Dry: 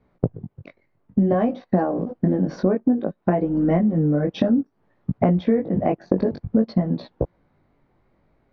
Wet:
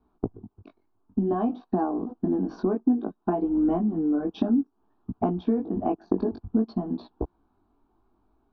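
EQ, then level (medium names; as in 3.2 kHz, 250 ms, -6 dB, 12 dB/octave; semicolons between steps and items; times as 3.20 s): low-pass 3.7 kHz 12 dB/octave; static phaser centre 540 Hz, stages 6; -1.5 dB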